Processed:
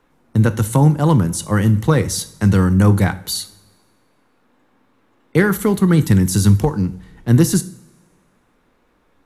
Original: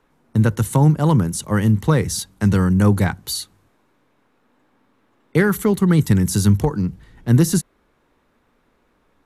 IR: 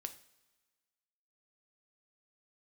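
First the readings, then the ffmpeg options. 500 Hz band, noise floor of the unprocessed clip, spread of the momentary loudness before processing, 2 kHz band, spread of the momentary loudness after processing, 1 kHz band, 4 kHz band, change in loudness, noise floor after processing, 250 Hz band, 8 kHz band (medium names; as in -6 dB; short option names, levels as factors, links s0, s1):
+2.0 dB, -63 dBFS, 10 LU, +2.0 dB, 10 LU, +2.0 dB, +2.5 dB, +2.0 dB, -60 dBFS, +1.5 dB, +2.0 dB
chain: -filter_complex "[0:a]asplit=2[s0][s1];[1:a]atrim=start_sample=2205[s2];[s1][s2]afir=irnorm=-1:irlink=0,volume=2.99[s3];[s0][s3]amix=inputs=2:normalize=0,volume=0.422"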